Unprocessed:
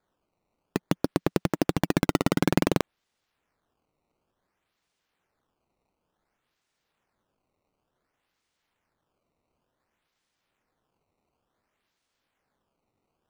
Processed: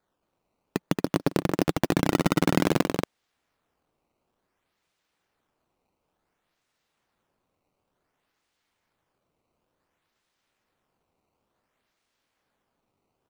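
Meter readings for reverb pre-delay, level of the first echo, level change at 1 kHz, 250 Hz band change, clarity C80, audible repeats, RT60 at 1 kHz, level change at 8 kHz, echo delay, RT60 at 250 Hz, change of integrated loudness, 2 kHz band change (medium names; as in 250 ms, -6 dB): no reverb, -19.0 dB, +1.5 dB, +1.0 dB, no reverb, 2, no reverb, +1.5 dB, 154 ms, no reverb, +1.0 dB, +1.5 dB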